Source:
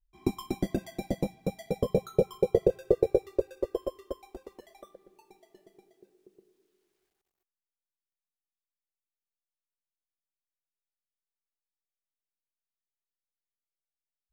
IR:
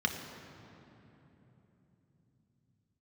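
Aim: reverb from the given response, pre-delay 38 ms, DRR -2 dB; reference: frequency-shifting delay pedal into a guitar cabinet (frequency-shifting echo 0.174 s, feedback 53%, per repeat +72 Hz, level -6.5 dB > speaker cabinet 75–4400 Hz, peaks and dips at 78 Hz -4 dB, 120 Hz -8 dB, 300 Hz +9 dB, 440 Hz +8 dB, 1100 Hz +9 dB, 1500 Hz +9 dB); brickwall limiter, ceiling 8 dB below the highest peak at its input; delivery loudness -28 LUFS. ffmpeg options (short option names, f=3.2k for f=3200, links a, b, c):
-filter_complex "[0:a]alimiter=limit=-16dB:level=0:latency=1,asplit=2[a][b];[1:a]atrim=start_sample=2205,adelay=38[c];[b][c]afir=irnorm=-1:irlink=0,volume=-5.5dB[d];[a][d]amix=inputs=2:normalize=0,asplit=8[e][f][g][h][i][j][k][l];[f]adelay=174,afreqshift=72,volume=-6.5dB[m];[g]adelay=348,afreqshift=144,volume=-12dB[n];[h]adelay=522,afreqshift=216,volume=-17.5dB[o];[i]adelay=696,afreqshift=288,volume=-23dB[p];[j]adelay=870,afreqshift=360,volume=-28.6dB[q];[k]adelay=1044,afreqshift=432,volume=-34.1dB[r];[l]adelay=1218,afreqshift=504,volume=-39.6dB[s];[e][m][n][o][p][q][r][s]amix=inputs=8:normalize=0,highpass=75,equalizer=f=78:t=q:w=4:g=-4,equalizer=f=120:t=q:w=4:g=-8,equalizer=f=300:t=q:w=4:g=9,equalizer=f=440:t=q:w=4:g=8,equalizer=f=1.1k:t=q:w=4:g=9,equalizer=f=1.5k:t=q:w=4:g=9,lowpass=f=4.4k:w=0.5412,lowpass=f=4.4k:w=1.3066,volume=-4.5dB"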